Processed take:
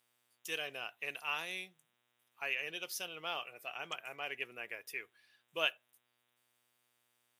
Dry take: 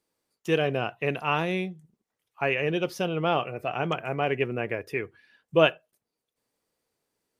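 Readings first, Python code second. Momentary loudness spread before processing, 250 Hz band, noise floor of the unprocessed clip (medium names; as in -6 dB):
9 LU, -26.0 dB, under -85 dBFS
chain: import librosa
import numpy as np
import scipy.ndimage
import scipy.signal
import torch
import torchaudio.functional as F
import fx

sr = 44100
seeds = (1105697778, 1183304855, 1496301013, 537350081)

y = fx.dmg_buzz(x, sr, base_hz=120.0, harmonics=32, level_db=-61.0, tilt_db=-6, odd_only=False)
y = np.diff(y, prepend=0.0)
y = F.gain(torch.from_numpy(y), 2.0).numpy()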